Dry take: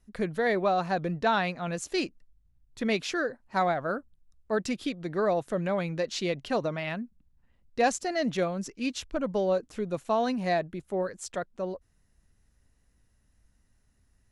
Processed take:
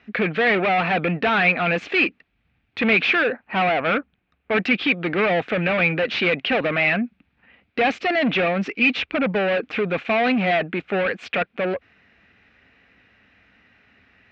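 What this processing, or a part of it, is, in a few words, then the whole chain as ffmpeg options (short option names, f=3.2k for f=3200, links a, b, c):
overdrive pedal into a guitar cabinet: -filter_complex "[0:a]asettb=1/sr,asplit=3[a][b][c];[a]atrim=end=3.224[d];[b]atrim=start=3.22:end=4.52,asetpts=PTS-STARTPTS,afade=t=in:d=0.004:c=qsin,afade=t=out:st=1.296:d=0.004:c=qsin,aemphasis=mode=reproduction:type=75kf[e];[c]atrim=start=4.516[f];[d][e]acrossfade=d=0.004:c1=hsin:c2=qsin[g];[g][f]acrossfade=d=0.004:c1=qsin:c2=hsin,asplit=2[h][i];[i]highpass=f=720:p=1,volume=29dB,asoftclip=type=tanh:threshold=-13dB[j];[h][j]amix=inputs=2:normalize=0,lowpass=f=2.7k:p=1,volume=-6dB,highpass=81,equalizer=f=140:t=q:w=4:g=-8,equalizer=f=360:t=q:w=4:g=-4,equalizer=f=590:t=q:w=4:g=-5,equalizer=f=980:t=q:w=4:g=-9,equalizer=f=2.4k:t=q:w=4:g=9,lowpass=f=3.4k:w=0.5412,lowpass=f=3.4k:w=1.3066,volume=2.5dB"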